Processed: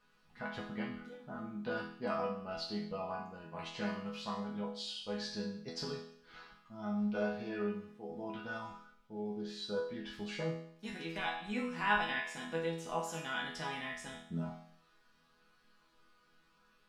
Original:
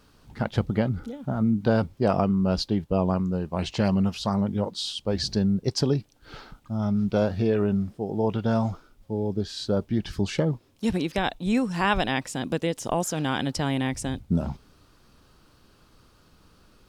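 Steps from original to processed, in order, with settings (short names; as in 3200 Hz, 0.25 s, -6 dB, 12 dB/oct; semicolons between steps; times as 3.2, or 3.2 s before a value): bell 1800 Hz +11.5 dB 2.6 oct; resonator bank E3 major, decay 0.65 s; gain +2.5 dB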